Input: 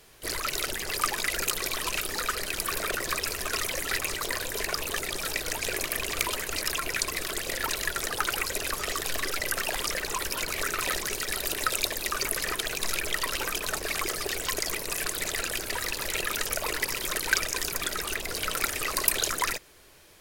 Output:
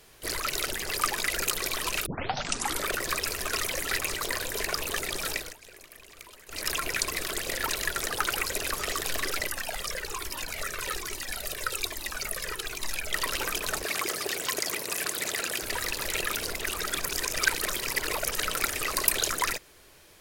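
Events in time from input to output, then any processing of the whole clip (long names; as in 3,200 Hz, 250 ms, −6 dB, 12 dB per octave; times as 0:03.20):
0:02.06: tape start 0.82 s
0:05.32–0:06.69: duck −19.5 dB, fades 0.23 s
0:09.47–0:13.13: flanger whose copies keep moving one way falling 1.2 Hz
0:13.84–0:15.62: high-pass filter 140 Hz
0:16.39–0:18.42: reverse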